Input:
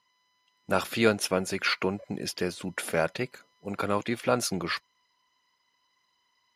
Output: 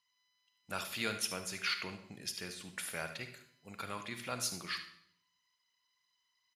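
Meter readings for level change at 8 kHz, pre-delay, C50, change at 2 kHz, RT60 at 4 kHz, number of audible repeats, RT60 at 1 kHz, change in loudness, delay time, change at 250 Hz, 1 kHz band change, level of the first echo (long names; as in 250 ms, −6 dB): −4.5 dB, 36 ms, 8.5 dB, −8.5 dB, 0.60 s, 1, 0.65 s, −10.0 dB, 75 ms, −16.0 dB, −12.0 dB, −14.0 dB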